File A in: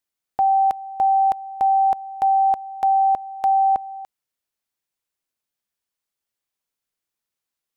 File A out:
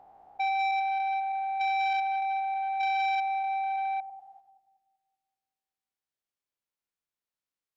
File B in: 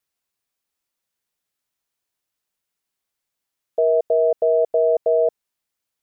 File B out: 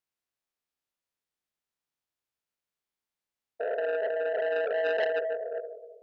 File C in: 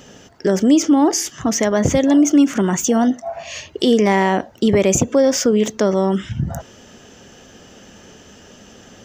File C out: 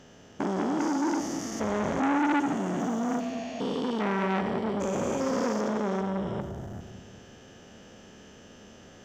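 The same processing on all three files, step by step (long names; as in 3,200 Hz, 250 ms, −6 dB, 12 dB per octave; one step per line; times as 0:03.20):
spectrum averaged block by block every 400 ms
high-shelf EQ 5,600 Hz −7.5 dB
echo with a time of its own for lows and highs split 480 Hz, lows 192 ms, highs 96 ms, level −9 dB
saturating transformer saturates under 1,500 Hz
level −5.5 dB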